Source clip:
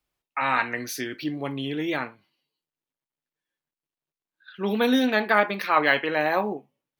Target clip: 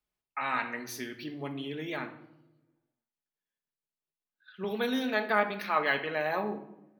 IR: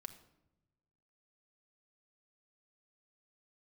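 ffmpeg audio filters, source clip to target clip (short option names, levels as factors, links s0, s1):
-filter_complex "[0:a]asettb=1/sr,asplit=3[s0][s1][s2];[s0]atrim=end=4.644[s3];[s1]atrim=start=4.64:end=5.3,asetpts=PTS-STARTPTS,afade=t=in:d=0.004:c=qsin,afade=t=out:st=0.656:d=0.004:c=qsin,highpass=280[s4];[s2]atrim=start=5.296[s5];[s3][s4]acrossfade=d=0.004:c1=hsin:c2=qsin[s6];[s6][s5]acrossfade=d=0.004:c1=qsin:c2=hsin[s7];[1:a]atrim=start_sample=2205[s8];[s7][s8]afir=irnorm=-1:irlink=0,volume=0.75"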